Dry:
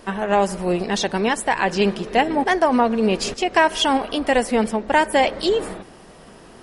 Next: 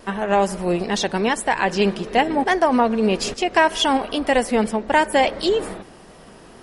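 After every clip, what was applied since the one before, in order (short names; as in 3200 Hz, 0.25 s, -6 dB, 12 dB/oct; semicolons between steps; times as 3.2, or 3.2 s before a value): wow and flutter 22 cents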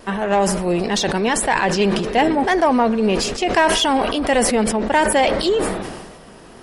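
in parallel at -4.5 dB: soft clip -17 dBFS, distortion -10 dB; on the sum: sustainer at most 41 dB/s; gain -2 dB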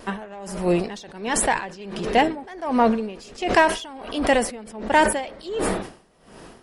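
dB-linear tremolo 1.4 Hz, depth 22 dB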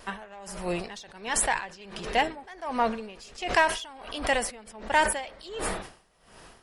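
bell 270 Hz -10.5 dB 2.3 oct; gain -2.5 dB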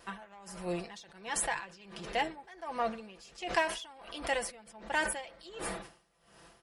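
HPF 42 Hz; comb 5.9 ms, depth 53%; gain -8 dB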